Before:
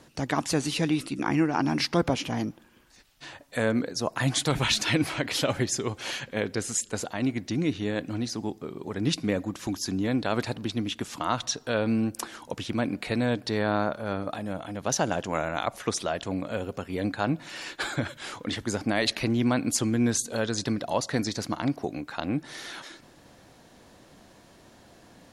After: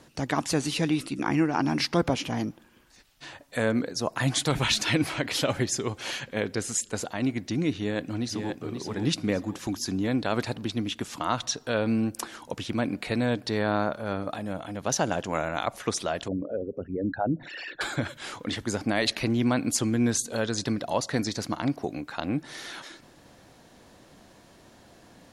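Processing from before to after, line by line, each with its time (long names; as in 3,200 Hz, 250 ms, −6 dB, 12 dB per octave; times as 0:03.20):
0:07.77–0:08.59: delay throw 530 ms, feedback 35%, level −6 dB
0:16.28–0:17.81: spectral envelope exaggerated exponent 3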